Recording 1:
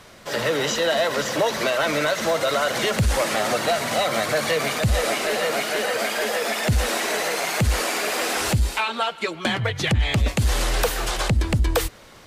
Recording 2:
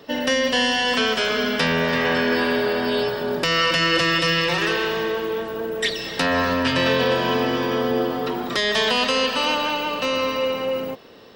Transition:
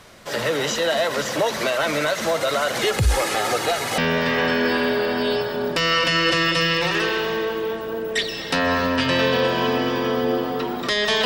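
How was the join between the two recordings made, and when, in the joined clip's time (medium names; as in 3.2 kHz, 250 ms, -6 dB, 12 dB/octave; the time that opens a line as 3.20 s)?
recording 1
2.81–3.98 s: comb 2.4 ms, depth 53%
3.98 s: go over to recording 2 from 1.65 s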